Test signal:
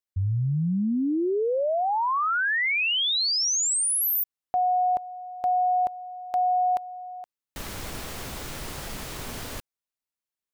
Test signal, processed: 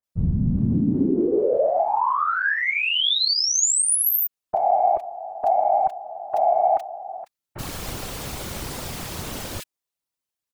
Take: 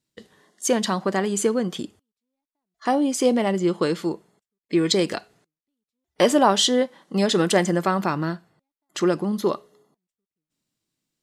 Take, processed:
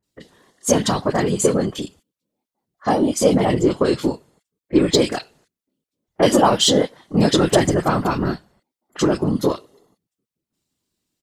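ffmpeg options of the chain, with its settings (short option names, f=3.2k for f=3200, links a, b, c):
-filter_complex "[0:a]aeval=exprs='0.596*(cos(1*acos(clip(val(0)/0.596,-1,1)))-cos(1*PI/2))+0.0266*(cos(5*acos(clip(val(0)/0.596,-1,1)))-cos(5*PI/2))':c=same,afftfilt=real='hypot(re,im)*cos(2*PI*random(0))':imag='hypot(re,im)*sin(2*PI*random(1))':win_size=512:overlap=0.75,acrossover=split=1800[a][b];[b]adelay=30[c];[a][c]amix=inputs=2:normalize=0,volume=8.5dB"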